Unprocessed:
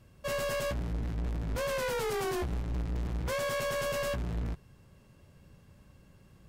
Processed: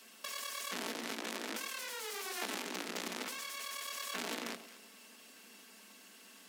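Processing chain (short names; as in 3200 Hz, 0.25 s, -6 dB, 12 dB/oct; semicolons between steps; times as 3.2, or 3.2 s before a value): minimum comb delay 4.5 ms; steep high-pass 200 Hz 96 dB/oct; tilt shelf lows -9.5 dB, about 1300 Hz; negative-ratio compressor -42 dBFS, ratio -1; on a send: echo with dull and thin repeats by turns 0.11 s, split 940 Hz, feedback 54%, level -10.5 dB; on the sum: gain +1 dB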